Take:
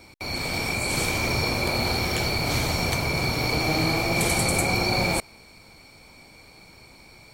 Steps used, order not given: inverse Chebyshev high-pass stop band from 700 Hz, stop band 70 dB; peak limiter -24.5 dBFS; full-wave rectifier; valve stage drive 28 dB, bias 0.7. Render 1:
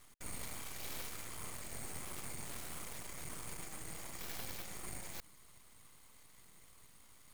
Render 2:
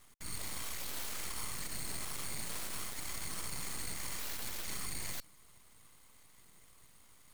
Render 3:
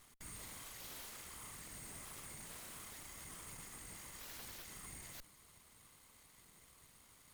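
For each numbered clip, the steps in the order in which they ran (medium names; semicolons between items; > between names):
peak limiter > valve stage > inverse Chebyshev high-pass > full-wave rectifier; inverse Chebyshev high-pass > peak limiter > valve stage > full-wave rectifier; peak limiter > inverse Chebyshev high-pass > full-wave rectifier > valve stage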